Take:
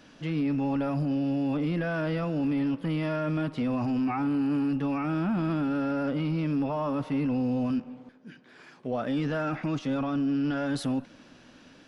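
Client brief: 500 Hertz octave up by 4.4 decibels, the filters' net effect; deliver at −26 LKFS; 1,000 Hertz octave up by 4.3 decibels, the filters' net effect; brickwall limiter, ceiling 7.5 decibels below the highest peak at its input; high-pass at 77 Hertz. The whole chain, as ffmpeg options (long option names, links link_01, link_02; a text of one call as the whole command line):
ffmpeg -i in.wav -af "highpass=77,equalizer=frequency=500:width_type=o:gain=4,equalizer=frequency=1000:width_type=o:gain=4.5,volume=4.5dB,alimiter=limit=-18.5dB:level=0:latency=1" out.wav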